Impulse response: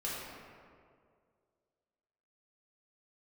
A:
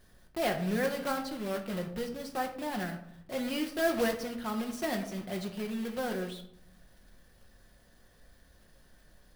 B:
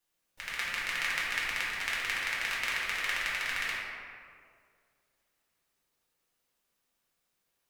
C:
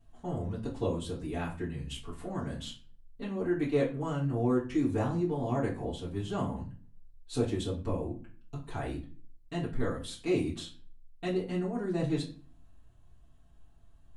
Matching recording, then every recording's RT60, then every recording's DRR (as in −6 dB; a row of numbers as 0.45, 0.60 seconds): B; 0.75, 2.1, 0.40 seconds; 3.0, −7.5, −8.0 decibels